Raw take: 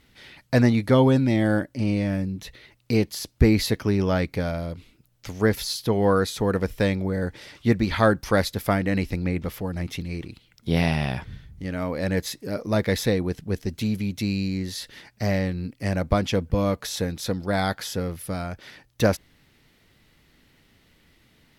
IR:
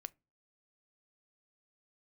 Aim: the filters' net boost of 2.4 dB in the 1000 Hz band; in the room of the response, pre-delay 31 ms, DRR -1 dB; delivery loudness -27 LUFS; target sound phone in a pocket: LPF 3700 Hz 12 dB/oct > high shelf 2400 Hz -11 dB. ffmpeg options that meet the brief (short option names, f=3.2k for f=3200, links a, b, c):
-filter_complex "[0:a]equalizer=f=1k:t=o:g=5.5,asplit=2[a][b];[1:a]atrim=start_sample=2205,adelay=31[c];[b][c]afir=irnorm=-1:irlink=0,volume=5.5dB[d];[a][d]amix=inputs=2:normalize=0,lowpass=3.7k,highshelf=f=2.4k:g=-11,volume=-6dB"